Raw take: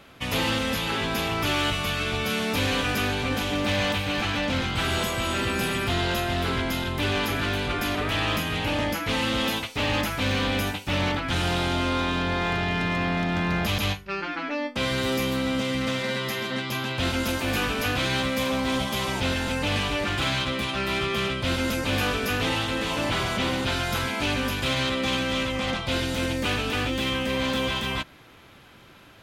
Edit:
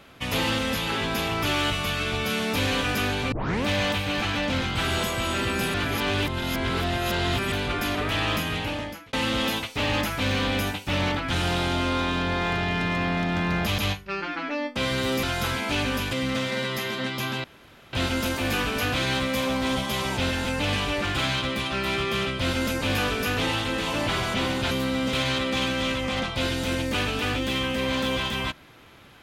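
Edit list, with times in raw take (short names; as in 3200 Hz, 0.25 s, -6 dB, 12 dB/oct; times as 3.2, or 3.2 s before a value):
3.32 tape start 0.33 s
5.74–7.52 reverse
8.5–9.13 fade out
15.23–15.65 swap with 23.74–24.64
16.96 insert room tone 0.49 s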